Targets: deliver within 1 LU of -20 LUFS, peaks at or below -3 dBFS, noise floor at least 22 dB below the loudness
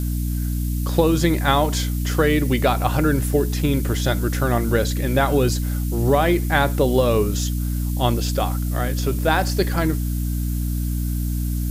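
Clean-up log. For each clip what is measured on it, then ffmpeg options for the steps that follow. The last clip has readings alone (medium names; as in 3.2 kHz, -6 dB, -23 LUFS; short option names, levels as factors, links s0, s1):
hum 60 Hz; highest harmonic 300 Hz; hum level -20 dBFS; noise floor -23 dBFS; noise floor target -43 dBFS; loudness -21.0 LUFS; peak level -2.0 dBFS; loudness target -20.0 LUFS
-> -af "bandreject=f=60:t=h:w=4,bandreject=f=120:t=h:w=4,bandreject=f=180:t=h:w=4,bandreject=f=240:t=h:w=4,bandreject=f=300:t=h:w=4"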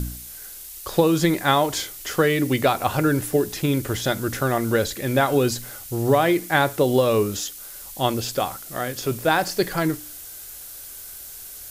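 hum not found; noise floor -39 dBFS; noise floor target -44 dBFS
-> -af "afftdn=nr=6:nf=-39"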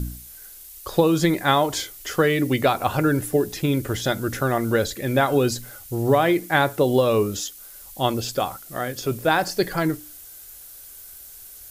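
noise floor -43 dBFS; noise floor target -44 dBFS
-> -af "afftdn=nr=6:nf=-43"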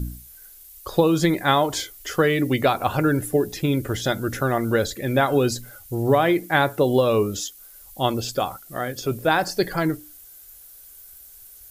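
noise floor -46 dBFS; loudness -22.5 LUFS; peak level -3.5 dBFS; loudness target -20.0 LUFS
-> -af "volume=1.33,alimiter=limit=0.708:level=0:latency=1"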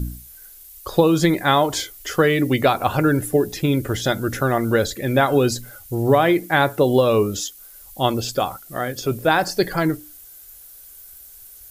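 loudness -20.0 LUFS; peak level -3.0 dBFS; noise floor -44 dBFS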